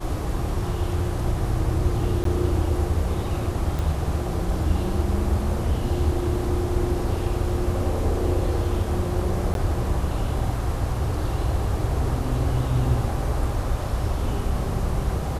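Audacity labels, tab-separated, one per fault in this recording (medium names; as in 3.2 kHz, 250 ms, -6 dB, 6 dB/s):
2.240000	2.250000	dropout
3.790000	3.790000	pop
9.540000	9.550000	dropout 12 ms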